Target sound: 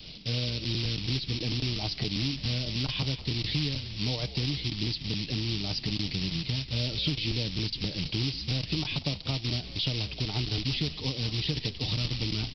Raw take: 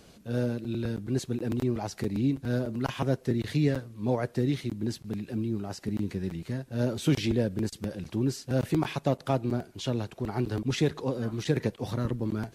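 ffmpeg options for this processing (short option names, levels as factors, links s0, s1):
-filter_complex "[0:a]aemphasis=mode=reproduction:type=bsi,aecho=1:1:6.6:0.38,adynamicequalizer=threshold=0.00891:dfrequency=480:dqfactor=3.5:tfrequency=480:tqfactor=3.5:attack=5:release=100:ratio=0.375:range=2:mode=cutabove:tftype=bell,aresample=11025,acrusher=bits=4:mode=log:mix=0:aa=0.000001,aresample=44100,acompressor=threshold=0.0447:ratio=6,acrossover=split=770|1500[s0][s1][s2];[s2]alimiter=level_in=6.68:limit=0.0631:level=0:latency=1:release=56,volume=0.15[s3];[s0][s1][s3]amix=inputs=3:normalize=0,aexciter=amount=11.2:drive=4.8:freq=2400,acontrast=71,asplit=7[s4][s5][s6][s7][s8][s9][s10];[s5]adelay=190,afreqshift=-58,volume=0.211[s11];[s6]adelay=380,afreqshift=-116,volume=0.123[s12];[s7]adelay=570,afreqshift=-174,volume=0.0708[s13];[s8]adelay=760,afreqshift=-232,volume=0.0412[s14];[s9]adelay=950,afreqshift=-290,volume=0.024[s15];[s10]adelay=1140,afreqshift=-348,volume=0.0138[s16];[s4][s11][s12][s13][s14][s15][s16]amix=inputs=7:normalize=0,volume=0.376"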